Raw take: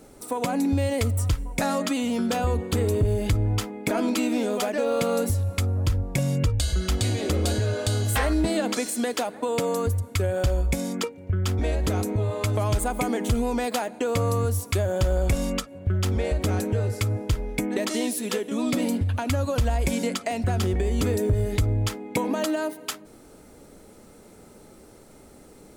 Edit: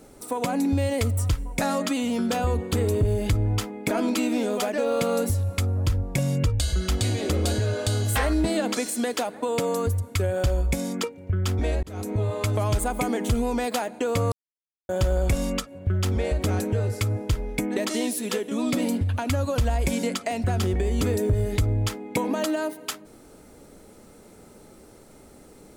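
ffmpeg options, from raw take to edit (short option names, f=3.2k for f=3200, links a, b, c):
-filter_complex "[0:a]asplit=4[a][b][c][d];[a]atrim=end=11.83,asetpts=PTS-STARTPTS,afade=t=out:st=11.826:d=0.004:c=hsin[e];[b]atrim=start=11.83:end=14.32,asetpts=PTS-STARTPTS,afade=t=in:d=0.35,afade=t=out:st=2.486:d=0.004:c=hsin[f];[c]atrim=start=14.32:end=14.89,asetpts=PTS-STARTPTS,volume=0[g];[d]atrim=start=14.89,asetpts=PTS-STARTPTS,afade=t=in:d=0.004:c=hsin[h];[e][f][g][h]concat=n=4:v=0:a=1"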